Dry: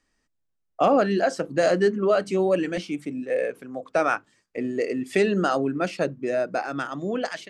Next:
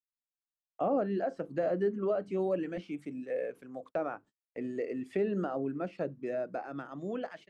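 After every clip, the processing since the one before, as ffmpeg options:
-filter_complex "[0:a]acrossover=split=3000[s0][s1];[s1]acompressor=threshold=0.00178:ratio=4:attack=1:release=60[s2];[s0][s2]amix=inputs=2:normalize=0,agate=range=0.02:threshold=0.01:ratio=16:detection=peak,acrossover=split=870[s3][s4];[s4]acompressor=threshold=0.0126:ratio=5[s5];[s3][s5]amix=inputs=2:normalize=0,volume=0.355"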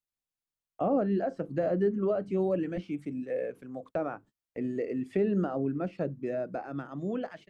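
-af "lowshelf=f=210:g=11.5"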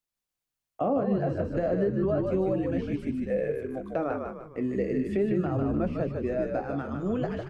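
-filter_complex "[0:a]flanger=delay=4.4:depth=6.6:regen=-66:speed=0.33:shape=triangular,asplit=2[s0][s1];[s1]asplit=6[s2][s3][s4][s5][s6][s7];[s2]adelay=151,afreqshift=-54,volume=0.631[s8];[s3]adelay=302,afreqshift=-108,volume=0.279[s9];[s4]adelay=453,afreqshift=-162,volume=0.122[s10];[s5]adelay=604,afreqshift=-216,volume=0.0537[s11];[s6]adelay=755,afreqshift=-270,volume=0.0237[s12];[s7]adelay=906,afreqshift=-324,volume=0.0104[s13];[s8][s9][s10][s11][s12][s13]amix=inputs=6:normalize=0[s14];[s0][s14]amix=inputs=2:normalize=0,alimiter=level_in=1.06:limit=0.0631:level=0:latency=1:release=409,volume=0.944,volume=2.37"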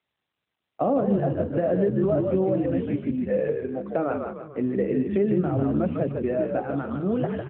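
-af "aecho=1:1:445|890:0.0794|0.0167,volume=1.58" -ar 8000 -c:a libopencore_amrnb -b:a 12200

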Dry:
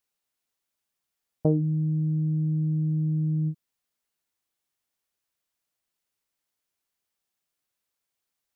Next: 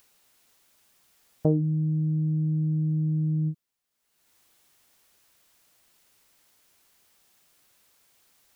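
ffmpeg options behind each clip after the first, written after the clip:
-af "acompressor=mode=upward:threshold=0.00447:ratio=2.5"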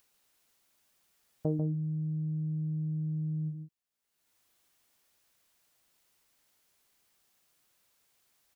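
-af "aecho=1:1:143:0.422,volume=0.376"

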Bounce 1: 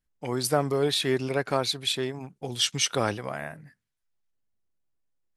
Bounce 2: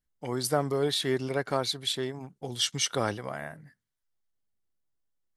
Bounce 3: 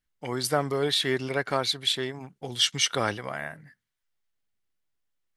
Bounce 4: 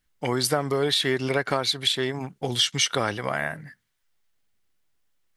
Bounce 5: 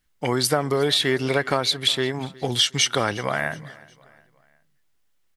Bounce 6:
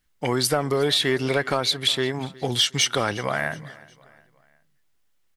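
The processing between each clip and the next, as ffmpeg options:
-af "bandreject=f=2500:w=7,volume=0.75"
-af "equalizer=f=2300:t=o:w=1.9:g=7"
-af "acompressor=threshold=0.0355:ratio=4,volume=2.66"
-af "aecho=1:1:363|726|1089:0.075|0.033|0.0145,volume=1.33"
-af "asoftclip=type=tanh:threshold=0.376"

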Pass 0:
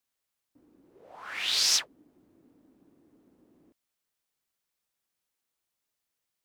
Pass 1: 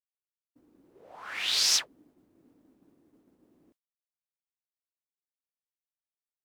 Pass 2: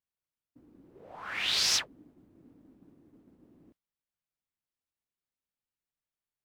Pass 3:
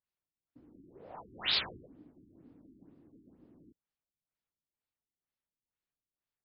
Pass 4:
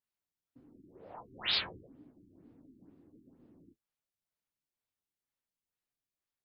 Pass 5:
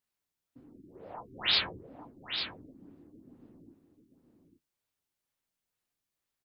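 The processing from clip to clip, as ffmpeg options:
-af "agate=range=0.0224:threshold=0.001:ratio=3:detection=peak"
-af "bass=f=250:g=8,treble=f=4000:g=-6,volume=1.19"
-af "afftfilt=real='re*lt(b*sr/1024,400*pow(5500/400,0.5+0.5*sin(2*PI*2.1*pts/sr)))':imag='im*lt(b*sr/1024,400*pow(5500/400,0.5+0.5*sin(2*PI*2.1*pts/sr)))':win_size=1024:overlap=0.75"
-af "flanger=delay=7.4:depth=3.8:regen=-41:speed=1.5:shape=sinusoidal,volume=1.41"
-af "aecho=1:1:845:0.398,volume=1.68"

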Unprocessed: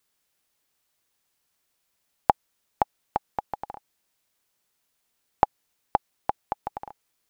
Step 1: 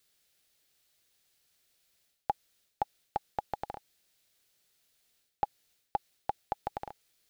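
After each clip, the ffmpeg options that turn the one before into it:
-af "equalizer=f=250:t=o:w=0.67:g=-4,equalizer=f=1000:t=o:w=0.67:g=-9,equalizer=f=4000:t=o:w=0.67:g=4,areverse,acompressor=threshold=0.0316:ratio=12,areverse,volume=1.33"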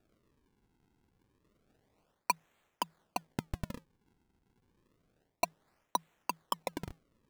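-af "aphaser=in_gain=1:out_gain=1:delay=3.7:decay=0.28:speed=0.66:type=sinusoidal,afreqshift=160,acrusher=samples=42:mix=1:aa=0.000001:lfo=1:lforange=67.2:lforate=0.29,volume=0.891"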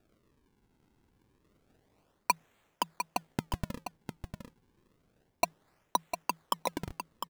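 -af "aecho=1:1:703:0.398,volume=1.41"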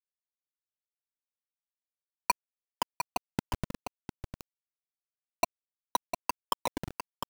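-af "aeval=exprs='val(0)+0.000398*(sin(2*PI*50*n/s)+sin(2*PI*2*50*n/s)/2+sin(2*PI*3*50*n/s)/3+sin(2*PI*4*50*n/s)/4+sin(2*PI*5*50*n/s)/5)':c=same,acrusher=bits=5:mix=0:aa=0.000001"

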